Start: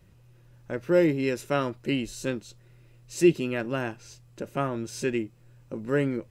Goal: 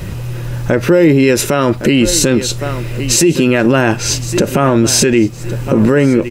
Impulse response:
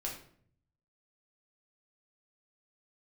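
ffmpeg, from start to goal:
-af "acompressor=threshold=-41dB:ratio=2,aecho=1:1:1112|2224:0.106|0.0297,alimiter=level_in=35dB:limit=-1dB:release=50:level=0:latency=1,volume=-1dB"

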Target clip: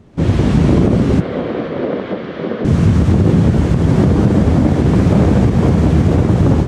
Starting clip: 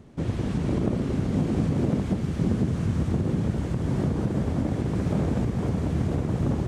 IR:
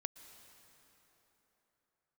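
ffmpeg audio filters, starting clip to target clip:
-filter_complex "[0:a]dynaudnorm=framelen=120:gausssize=3:maxgain=11.5dB,asettb=1/sr,asplit=3[link_01][link_02][link_03];[link_01]atrim=end=1.204[link_04];[link_02]atrim=start=1.2:end=2.65,asetpts=PTS-STARTPTS,afade=type=in:duration=0.004:curve=qsin,afade=type=out:start_time=1.446:duration=0.004:curve=qsin,highpass=460,equalizer=frequency=510:width_type=q:width=4:gain=5,equalizer=frequency=840:width_type=q:width=4:gain=-6,equalizer=frequency=2600:width_type=q:width=4:gain=-5,lowpass=frequency=3500:width=0.5412,lowpass=frequency=3500:width=1.3066[link_05];[link_03]atrim=start=2.646[link_06];[link_04][link_05]acrossfade=duration=0.004:curve1=hsin:curve2=qsin[link_07];[link_07][link_06]acrossfade=duration=0.004:curve1=qsin:curve2=hsin,flanger=delay=9.9:depth=3.6:regen=-57:speed=0.95:shape=sinusoidal,asplit=2[link_08][link_09];[1:a]atrim=start_sample=2205,lowpass=7600[link_10];[link_09][link_10]afir=irnorm=-1:irlink=0,volume=-2.5dB[link_11];[link_08][link_11]amix=inputs=2:normalize=0,alimiter=level_in=5.5dB:limit=-1dB:release=50:level=0:latency=1,volume=-1dB"

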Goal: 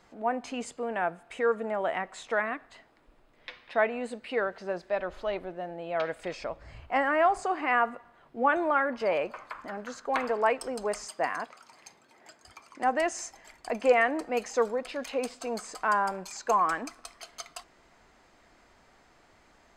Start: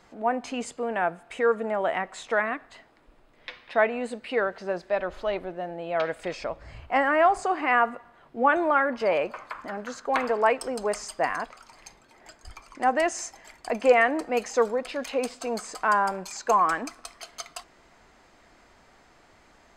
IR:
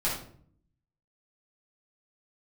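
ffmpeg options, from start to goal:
-filter_complex "[0:a]asettb=1/sr,asplit=3[link_01][link_02][link_03];[link_01]atrim=end=11.074[link_04];[link_02]atrim=start=11.07:end=12.83,asetpts=PTS-STARTPTS,afade=type=in:duration=0.004:curve=qsin,afade=type=out:start_time=1.756:duration=0.004:curve=qsin,highpass=140[link_05];[link_03]atrim=start=12.826[link_06];[link_04][link_05]acrossfade=duration=0.004:curve1=hsin:curve2=qsin[link_07];[link_07][link_06]acrossfade=duration=0.004:curve1=qsin:curve2=hsin,volume=-3.5dB"

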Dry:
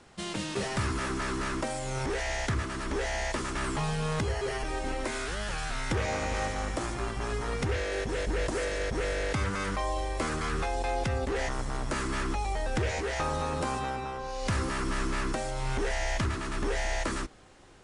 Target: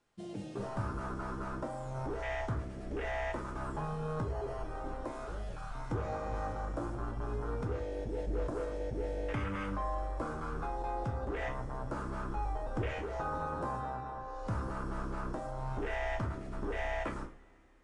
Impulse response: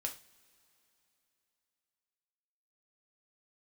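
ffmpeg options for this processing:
-filter_complex "[0:a]afwtdn=0.0251[link_01];[1:a]atrim=start_sample=2205[link_02];[link_01][link_02]afir=irnorm=-1:irlink=0,volume=-4dB"

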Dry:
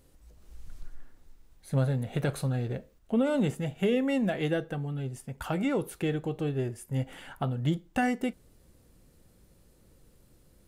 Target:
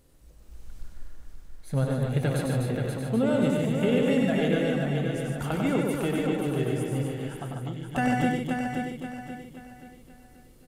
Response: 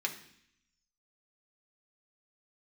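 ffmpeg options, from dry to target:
-filter_complex "[0:a]asplit=2[link_01][link_02];[link_02]aecho=0:1:530|1060|1590|2120|2650:0.531|0.202|0.0767|0.0291|0.0111[link_03];[link_01][link_03]amix=inputs=2:normalize=0,asettb=1/sr,asplit=3[link_04][link_05][link_06];[link_04]atrim=end=7.034[link_07];[link_05]atrim=start=7.03:end=7.83,asetpts=PTS-STARTPTS,afade=type=in:duration=0.004:curve=qsin,afade=type=out:start_time=0.796:duration=0.004:curve=qsin,acompressor=threshold=-38dB:ratio=2.5[link_08];[link_06]atrim=start=7.826[link_09];[link_07][link_08]acrossfade=duration=0.004:curve1=hsin:curve2=qsin[link_10];[link_10][link_09]acrossfade=duration=0.004:curve1=qsin:curve2=hsin,asplit=2[link_11][link_12];[link_12]aecho=0:1:96.21|145.8|247.8|282.8:0.631|0.562|0.562|0.282[link_13];[link_11][link_13]amix=inputs=2:normalize=0"

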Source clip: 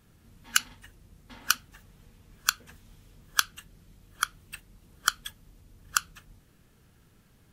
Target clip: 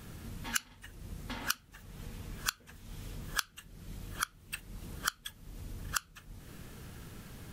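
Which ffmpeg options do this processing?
ffmpeg -i in.wav -af "acompressor=threshold=-51dB:ratio=3,volume=12.5dB" out.wav

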